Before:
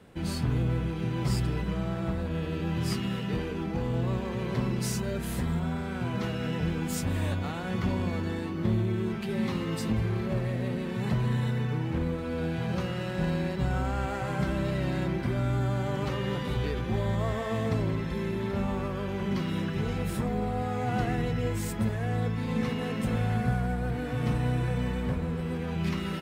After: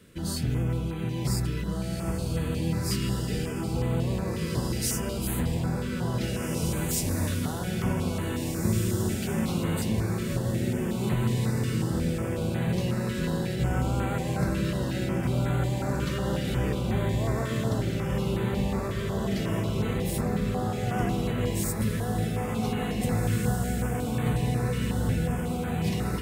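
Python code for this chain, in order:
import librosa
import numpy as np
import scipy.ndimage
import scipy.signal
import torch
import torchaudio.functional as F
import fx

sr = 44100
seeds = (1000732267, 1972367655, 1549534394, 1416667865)

y = fx.high_shelf(x, sr, hz=5000.0, db=10.5)
y = fx.echo_diffused(y, sr, ms=1941, feedback_pct=46, wet_db=-3)
y = fx.filter_held_notch(y, sr, hz=5.5, low_hz=800.0, high_hz=5300.0)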